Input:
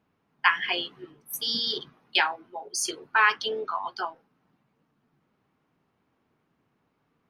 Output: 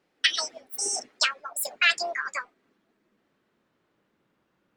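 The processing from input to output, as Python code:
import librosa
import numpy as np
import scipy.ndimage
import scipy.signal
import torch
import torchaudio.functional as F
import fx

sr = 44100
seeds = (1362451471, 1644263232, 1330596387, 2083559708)

y = fx.speed_glide(x, sr, from_pct=186, to_pct=120)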